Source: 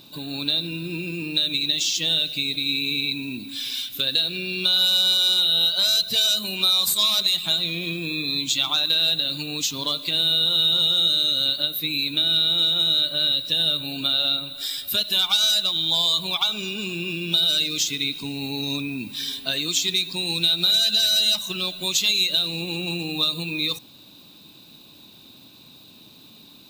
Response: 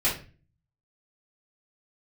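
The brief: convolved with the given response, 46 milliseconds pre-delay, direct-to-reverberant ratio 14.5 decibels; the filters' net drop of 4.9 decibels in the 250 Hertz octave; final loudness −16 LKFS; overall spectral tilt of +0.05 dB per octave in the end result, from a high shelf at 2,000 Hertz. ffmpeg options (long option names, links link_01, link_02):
-filter_complex "[0:a]equalizer=frequency=250:width_type=o:gain=-7.5,highshelf=frequency=2000:gain=9,asplit=2[link_01][link_02];[1:a]atrim=start_sample=2205,adelay=46[link_03];[link_02][link_03]afir=irnorm=-1:irlink=0,volume=-26dB[link_04];[link_01][link_04]amix=inputs=2:normalize=0,volume=-3dB"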